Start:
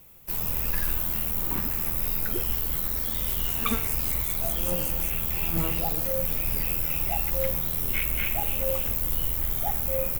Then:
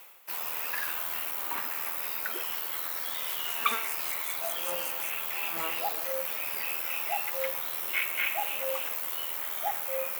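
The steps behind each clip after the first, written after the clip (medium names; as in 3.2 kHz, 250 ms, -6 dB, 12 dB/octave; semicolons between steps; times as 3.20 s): high-pass 890 Hz 12 dB/octave; treble shelf 4.7 kHz -11.5 dB; reverse; upward compressor, threshold -40 dBFS; reverse; trim +5.5 dB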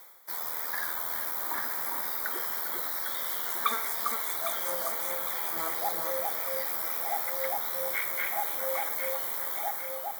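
fade out at the end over 0.67 s; Butterworth band-stop 2.7 kHz, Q 2.3; echo whose repeats swap between lows and highs 402 ms, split 1.3 kHz, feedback 67%, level -2.5 dB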